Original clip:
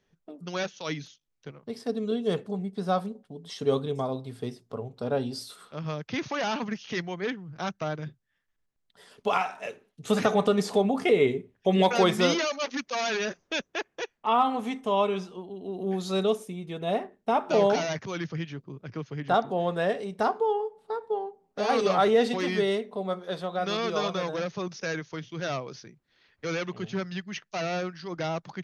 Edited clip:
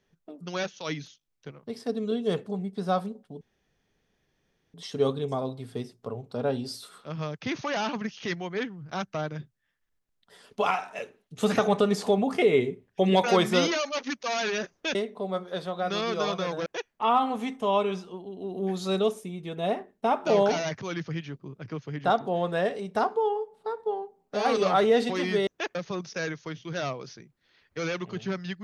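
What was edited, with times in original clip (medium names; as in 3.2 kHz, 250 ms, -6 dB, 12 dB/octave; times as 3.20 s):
3.41 s: insert room tone 1.33 s
13.62–13.90 s: swap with 22.71–24.42 s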